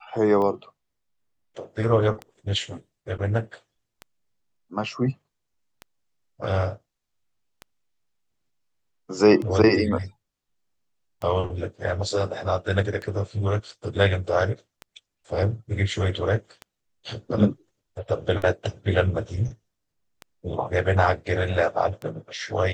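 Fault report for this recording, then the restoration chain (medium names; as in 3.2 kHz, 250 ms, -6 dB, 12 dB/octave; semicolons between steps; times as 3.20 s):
tick 33 1/3 rpm -20 dBFS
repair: de-click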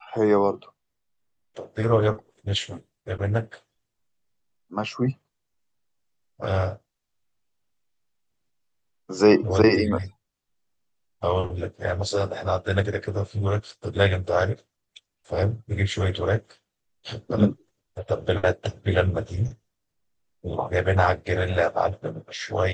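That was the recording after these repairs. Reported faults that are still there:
nothing left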